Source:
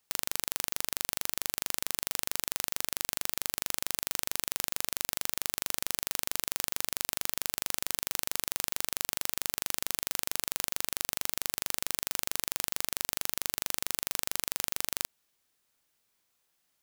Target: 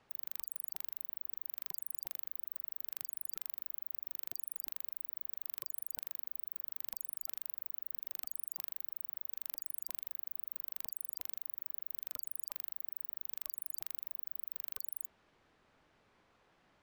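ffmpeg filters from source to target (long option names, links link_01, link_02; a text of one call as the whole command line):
ffmpeg -i in.wav -af "adynamicsmooth=sensitivity=6.5:basefreq=1800,afftfilt=real='re*lt(hypot(re,im),0.00398)':imag='im*lt(hypot(re,im),0.00398)':win_size=1024:overlap=0.75,volume=17dB" out.wav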